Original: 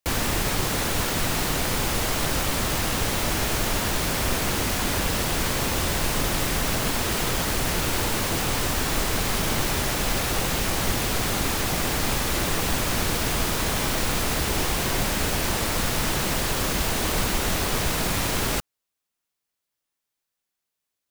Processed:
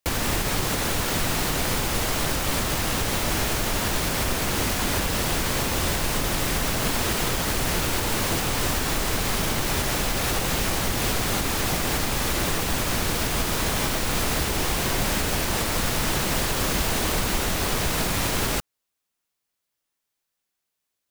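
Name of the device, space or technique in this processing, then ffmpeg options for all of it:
clipper into limiter: -af "asoftclip=type=hard:threshold=-11.5dB,alimiter=limit=-15.5dB:level=0:latency=1:release=195,volume=2dB"

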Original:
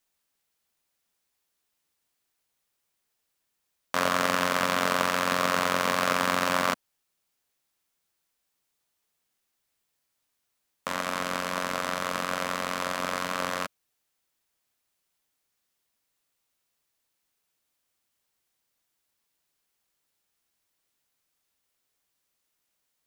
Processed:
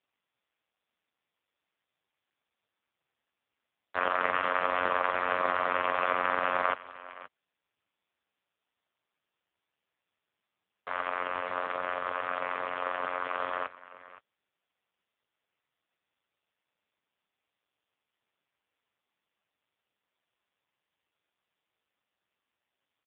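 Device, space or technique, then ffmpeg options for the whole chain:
satellite phone: -af "highpass=350,lowpass=3200,aecho=1:1:522:0.133" -ar 8000 -c:a libopencore_amrnb -b:a 5150

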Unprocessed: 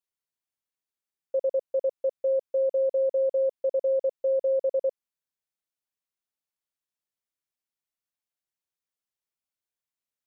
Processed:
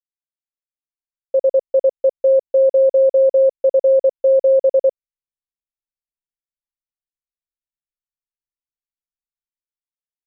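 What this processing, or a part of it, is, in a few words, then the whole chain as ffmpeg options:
voice memo with heavy noise removal: -af "anlmdn=0.0398,dynaudnorm=framelen=160:gausssize=13:maxgain=11.5dB"

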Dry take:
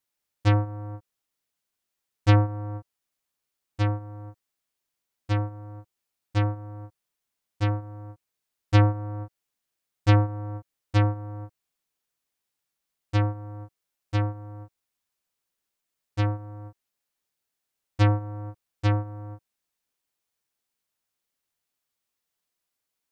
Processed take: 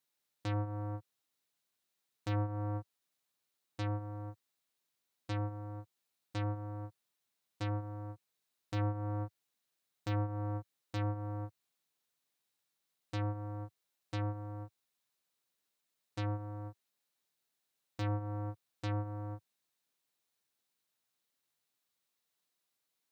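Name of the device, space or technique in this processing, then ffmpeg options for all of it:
broadcast voice chain: -af "highpass=frequency=98:width=0.5412,highpass=frequency=98:width=1.3066,deesser=0.65,acompressor=threshold=-28dB:ratio=3,equalizer=frequency=3900:width_type=o:width=0.24:gain=5,alimiter=limit=-23dB:level=0:latency=1:release=142,volume=-1.5dB"

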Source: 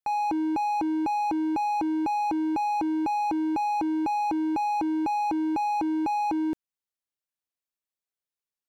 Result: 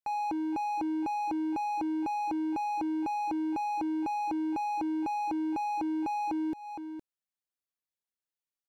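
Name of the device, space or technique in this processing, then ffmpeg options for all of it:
ducked delay: -filter_complex "[0:a]asplit=3[link_01][link_02][link_03];[link_02]adelay=463,volume=-8dB[link_04];[link_03]apad=whole_len=403381[link_05];[link_04][link_05]sidechaincompress=threshold=-34dB:ratio=8:attack=7.4:release=246[link_06];[link_01][link_06]amix=inputs=2:normalize=0,volume=-5.5dB"

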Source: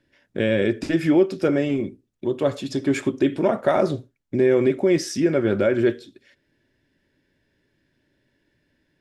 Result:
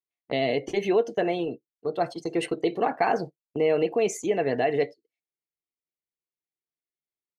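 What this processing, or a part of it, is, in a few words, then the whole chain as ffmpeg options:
nightcore: -af "afftdn=noise_reduction=14:noise_floor=-41,agate=range=-19dB:threshold=-30dB:ratio=16:detection=peak,asetrate=53802,aresample=44100,lowshelf=frequency=330:gain=-5.5,volume=-3dB"

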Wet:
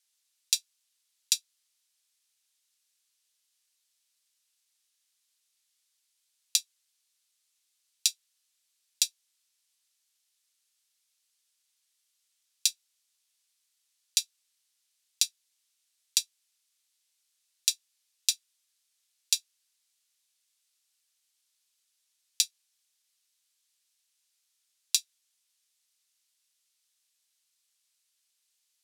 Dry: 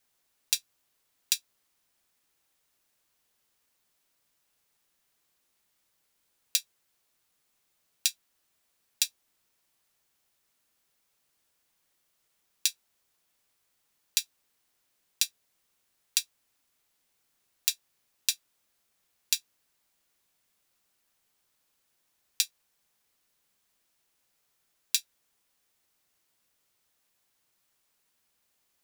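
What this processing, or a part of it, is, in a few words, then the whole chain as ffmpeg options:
piezo pickup straight into a mixer: -af "lowpass=8900,aderivative,equalizer=frequency=3700:width=0.9:gain=4.5,volume=2.5dB"

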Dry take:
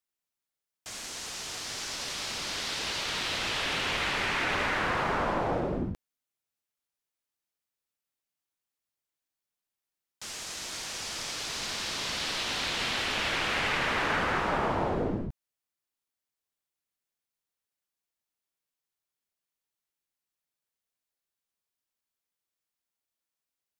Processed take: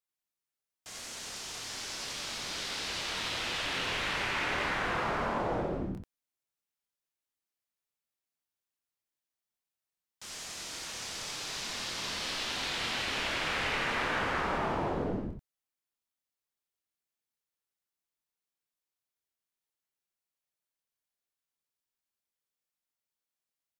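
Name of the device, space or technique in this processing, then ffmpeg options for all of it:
slapback doubling: -filter_complex "[0:a]asplit=3[link_01][link_02][link_03];[link_02]adelay=26,volume=-5dB[link_04];[link_03]adelay=88,volume=-4dB[link_05];[link_01][link_04][link_05]amix=inputs=3:normalize=0,volume=-5.5dB"

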